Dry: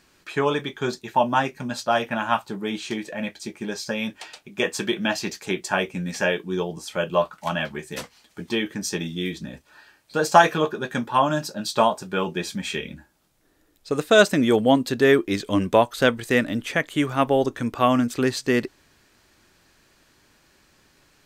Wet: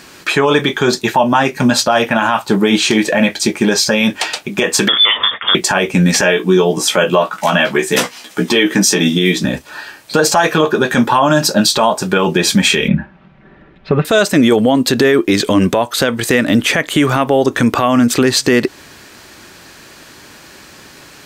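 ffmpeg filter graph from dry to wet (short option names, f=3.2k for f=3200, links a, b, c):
-filter_complex "[0:a]asettb=1/sr,asplit=3[a][b][c];[a]atrim=end=4.884[d];[b]atrim=start=4.88:end=5.55,asetpts=PTS-STARTPTS,afade=t=in:d=0.004:c=qsin,afade=t=out:st=0.666:d=0.004:c=qsin,acompressor=threshold=-25dB:ratio=6:attack=3.2:release=140:knee=1:detection=peak,lowpass=f=3.1k:t=q:w=0.5098,lowpass=f=3.1k:t=q:w=0.6013,lowpass=f=3.1k:t=q:w=0.9,lowpass=f=3.1k:t=q:w=2.563,afreqshift=-3700[e];[c]atrim=start=5.546[f];[d][e]acrossfade=d=0.004:c1=hsin:c2=qsin[g];[g][f]acrossfade=d=0.004:c1=qsin:c2=hsin,asettb=1/sr,asplit=3[h][i][j];[h]atrim=end=6.214[k];[i]atrim=start=6.21:end=9.45,asetpts=PTS-STARTPTS,afade=t=in:d=0.004:c=qsin,afade=t=out:st=3.236:d=0.004:c=qsin,highpass=170,bandreject=f=4.4k:w=15,asplit=2[l][m];[m]adelay=16,volume=-5.5dB[n];[l][n]amix=inputs=2:normalize=0,atrim=end_sample=142884[o];[j]atrim=start=9.446[p];[k][o]acrossfade=d=0.004:c1=hsin:c2=qsin[q];[q][p]acrossfade=d=0.004:c1=qsin:c2=hsin,asettb=1/sr,asplit=3[r][s][t];[r]atrim=end=12.884[u];[s]atrim=start=12.88:end=14.05,asetpts=PTS-STARTPTS,afade=t=in:d=0.004:c=qsin,afade=t=out:st=1.166:d=0.004:c=qsin,lowpass=f=2.6k:w=0.5412,lowpass=f=2.6k:w=1.3066,lowshelf=f=250:t=q:w=1.5:g=6.5,aecho=1:1:5.2:0.58,atrim=end_sample=51597[v];[t]atrim=start=14.046[w];[u][v]acrossfade=d=0.004:c1=hsin:c2=qsin[x];[x][w]acrossfade=d=0.004:c1=qsin:c2=hsin,highpass=f=120:p=1,acompressor=threshold=-26dB:ratio=3,alimiter=level_in=22dB:limit=-1dB:release=50:level=0:latency=1,volume=-1dB"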